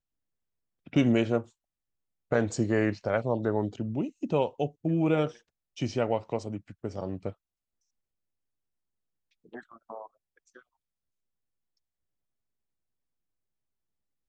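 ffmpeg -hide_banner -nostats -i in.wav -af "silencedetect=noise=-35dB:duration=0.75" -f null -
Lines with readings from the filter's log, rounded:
silence_start: 0.00
silence_end: 0.87 | silence_duration: 0.87
silence_start: 1.41
silence_end: 2.32 | silence_duration: 0.91
silence_start: 7.30
silence_end: 9.55 | silence_duration: 2.24
silence_start: 10.03
silence_end: 14.28 | silence_duration: 4.25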